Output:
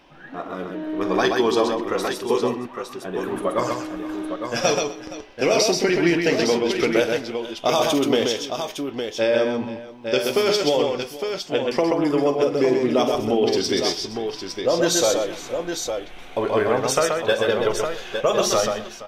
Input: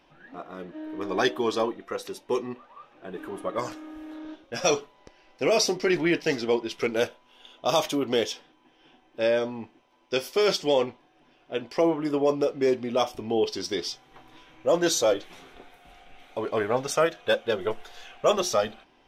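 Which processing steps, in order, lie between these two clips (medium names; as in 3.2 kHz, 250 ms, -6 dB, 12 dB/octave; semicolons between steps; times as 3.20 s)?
compression, threshold -24 dBFS, peak gain reduction 8 dB; on a send: multi-tap echo 47/129/253/469/859 ms -11.5/-4/-20/-17/-7 dB; on the sum: trim +7.5 dB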